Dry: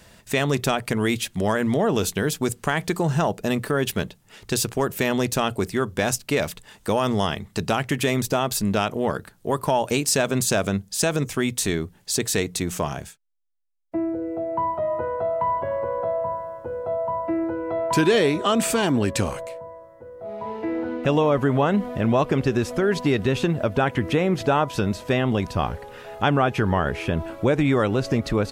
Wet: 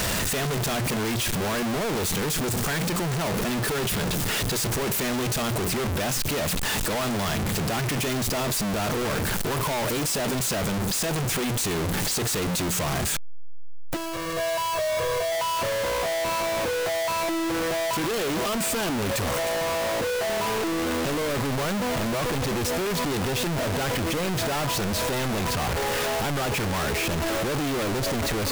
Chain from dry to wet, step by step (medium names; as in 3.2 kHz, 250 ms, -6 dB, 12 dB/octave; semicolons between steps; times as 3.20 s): one-bit comparator; 13.96–15.32 s: comb 1.8 ms, depth 96%; saturation -23.5 dBFS, distortion -20 dB